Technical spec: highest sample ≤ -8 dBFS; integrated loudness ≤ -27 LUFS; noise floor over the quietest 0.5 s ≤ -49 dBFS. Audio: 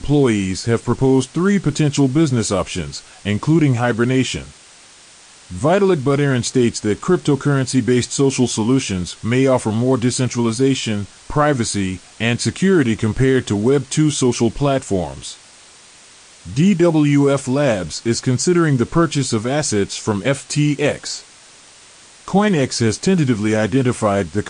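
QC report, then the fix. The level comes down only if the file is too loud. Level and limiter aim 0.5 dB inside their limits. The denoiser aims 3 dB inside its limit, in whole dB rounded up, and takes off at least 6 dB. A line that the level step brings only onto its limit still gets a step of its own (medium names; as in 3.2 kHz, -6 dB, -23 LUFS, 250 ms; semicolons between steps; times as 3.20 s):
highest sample -4.5 dBFS: fail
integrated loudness -17.5 LUFS: fail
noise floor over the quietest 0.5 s -45 dBFS: fail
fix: trim -10 dB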